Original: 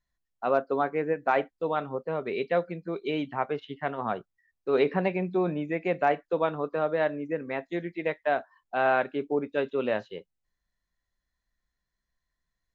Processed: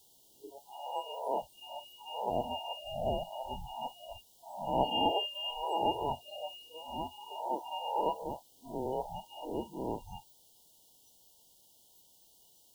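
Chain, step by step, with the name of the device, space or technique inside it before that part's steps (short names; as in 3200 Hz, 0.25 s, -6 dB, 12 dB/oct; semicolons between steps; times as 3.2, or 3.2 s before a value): spectral swells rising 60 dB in 0.89 s; scrambled radio voice (BPF 390–3000 Hz; inverted band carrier 3000 Hz; white noise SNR 18 dB); spectral noise reduction 24 dB; FFT band-reject 980–2800 Hz; 0.76–1.41 Chebyshev high-pass 200 Hz, order 5; gain +8 dB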